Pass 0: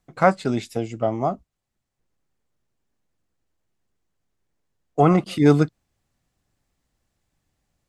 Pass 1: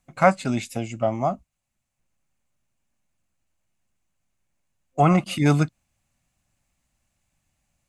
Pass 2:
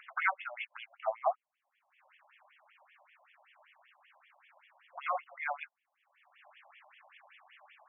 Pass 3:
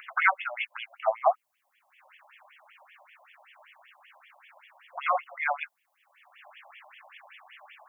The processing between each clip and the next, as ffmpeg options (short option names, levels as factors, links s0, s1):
-af "superequalizer=6b=0.562:7b=0.355:12b=1.78:15b=1.78:16b=1.78"
-af "acompressor=mode=upward:threshold=0.112:ratio=2.5,afftfilt=real='re*between(b*sr/1024,760*pow(2500/760,0.5+0.5*sin(2*PI*5.2*pts/sr))/1.41,760*pow(2500/760,0.5+0.5*sin(2*PI*5.2*pts/sr))*1.41)':imag='im*between(b*sr/1024,760*pow(2500/760,0.5+0.5*sin(2*PI*5.2*pts/sr))/1.41,760*pow(2500/760,0.5+0.5*sin(2*PI*5.2*pts/sr))*1.41)':win_size=1024:overlap=0.75,volume=0.708"
-af "crystalizer=i=1:c=0,volume=2.37"